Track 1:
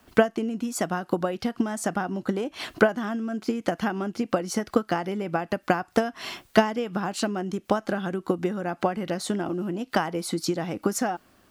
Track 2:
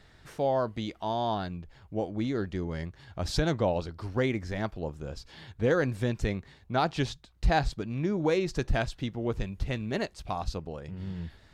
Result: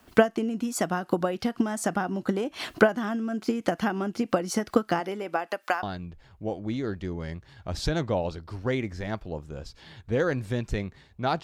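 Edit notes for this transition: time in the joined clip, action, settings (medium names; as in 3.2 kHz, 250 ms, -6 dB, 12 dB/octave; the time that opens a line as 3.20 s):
track 1
4.99–5.83 s: high-pass 240 Hz -> 830 Hz
5.83 s: go over to track 2 from 1.34 s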